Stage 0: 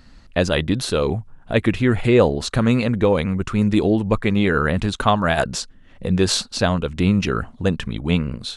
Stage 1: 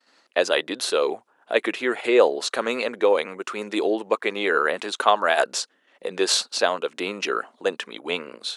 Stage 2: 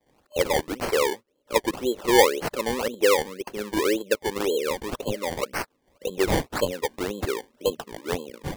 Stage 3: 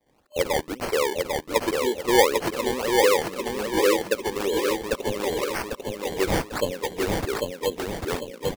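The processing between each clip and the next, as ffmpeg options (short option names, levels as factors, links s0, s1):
-af "agate=range=0.0224:threshold=0.00794:ratio=3:detection=peak,highpass=f=380:w=0.5412,highpass=f=380:w=1.3066"
-af "lowpass=f=7200:w=0.5412,lowpass=f=7200:w=1.3066,afftfilt=real='re*(1-between(b*sr/4096,600,2600))':imag='im*(1-between(b*sr/4096,600,2600))':win_size=4096:overlap=0.75,acrusher=samples=23:mix=1:aa=0.000001:lfo=1:lforange=23:lforate=1.9"
-af "aecho=1:1:796|1592|2388|3184|3980:0.708|0.29|0.119|0.0488|0.02,volume=0.891"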